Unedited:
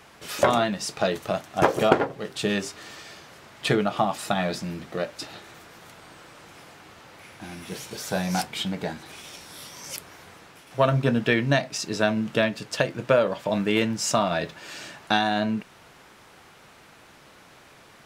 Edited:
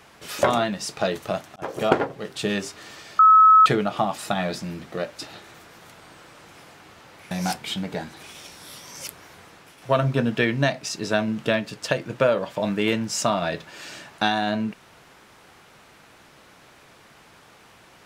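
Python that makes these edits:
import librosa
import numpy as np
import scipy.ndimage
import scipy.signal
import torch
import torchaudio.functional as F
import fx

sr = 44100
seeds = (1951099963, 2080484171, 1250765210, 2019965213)

y = fx.edit(x, sr, fx.fade_in_span(start_s=1.56, length_s=0.38),
    fx.bleep(start_s=3.19, length_s=0.47, hz=1290.0, db=-9.0),
    fx.cut(start_s=7.31, length_s=0.89), tone=tone)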